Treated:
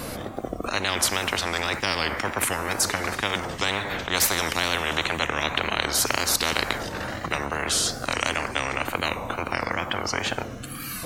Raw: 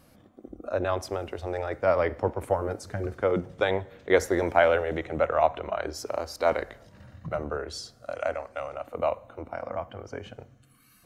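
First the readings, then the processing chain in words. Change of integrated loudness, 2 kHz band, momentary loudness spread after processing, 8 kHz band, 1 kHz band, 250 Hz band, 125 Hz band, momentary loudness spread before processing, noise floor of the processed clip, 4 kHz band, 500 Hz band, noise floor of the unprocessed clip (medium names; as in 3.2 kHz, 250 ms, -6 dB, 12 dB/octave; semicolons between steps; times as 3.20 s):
+3.5 dB, +9.0 dB, 8 LU, +19.5 dB, +3.0 dB, +2.5 dB, +2.5 dB, 15 LU, -36 dBFS, +17.5 dB, -5.0 dB, -59 dBFS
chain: wow and flutter 95 cents; spectrum-flattening compressor 10:1; trim +3.5 dB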